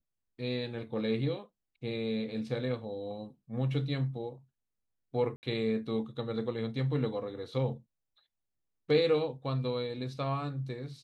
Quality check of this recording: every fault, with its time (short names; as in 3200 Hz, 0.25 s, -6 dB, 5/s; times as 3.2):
5.36–5.43 gap 69 ms